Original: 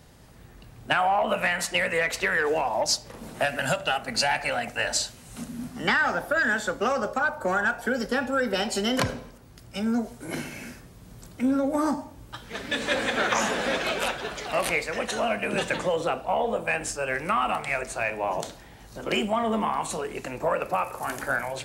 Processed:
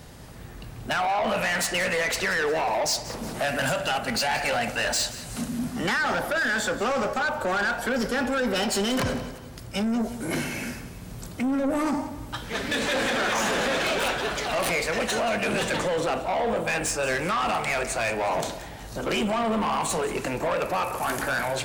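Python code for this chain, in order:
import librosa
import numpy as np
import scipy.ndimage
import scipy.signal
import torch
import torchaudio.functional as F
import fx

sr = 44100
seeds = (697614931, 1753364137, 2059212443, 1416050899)

p1 = fx.over_compress(x, sr, threshold_db=-27.0, ratio=-0.5)
p2 = x + (p1 * librosa.db_to_amplitude(-2.5))
p3 = 10.0 ** (-23.0 / 20.0) * np.tanh(p2 / 10.0 ** (-23.0 / 20.0))
p4 = fx.echo_feedback(p3, sr, ms=182, feedback_pct=44, wet_db=-15.0)
y = p4 * librosa.db_to_amplitude(1.5)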